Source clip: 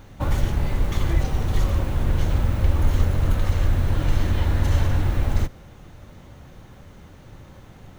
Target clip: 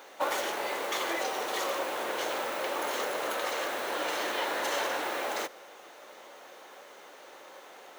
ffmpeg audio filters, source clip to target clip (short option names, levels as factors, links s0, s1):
-af "highpass=f=440:w=0.5412,highpass=f=440:w=1.3066,volume=1.5"